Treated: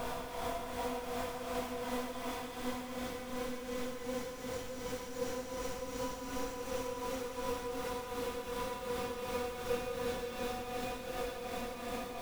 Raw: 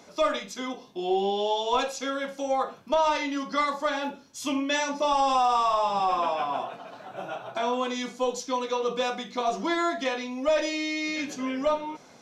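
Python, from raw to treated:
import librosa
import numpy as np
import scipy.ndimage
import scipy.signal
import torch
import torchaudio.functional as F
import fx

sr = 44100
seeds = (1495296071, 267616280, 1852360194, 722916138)

p1 = fx.delta_hold(x, sr, step_db=-29.5)
p2 = fx.schmitt(p1, sr, flips_db=-30.0)
p3 = p1 + (p2 * librosa.db_to_amplitude(-10.5))
p4 = fx.chorus_voices(p3, sr, voices=6, hz=0.41, base_ms=25, depth_ms=2.2, mix_pct=35)
p5 = 10.0 ** (-28.5 / 20.0) * np.tanh(p4 / 10.0 ** (-28.5 / 20.0))
p6 = fx.paulstretch(p5, sr, seeds[0], factor=7.0, window_s=1.0, from_s=7.57)
p7 = fx.tremolo_shape(p6, sr, shape='triangle', hz=2.7, depth_pct=70)
p8 = p7 + fx.echo_single(p7, sr, ms=172, db=-9.0, dry=0)
y = p8 * librosa.db_to_amplitude(-2.5)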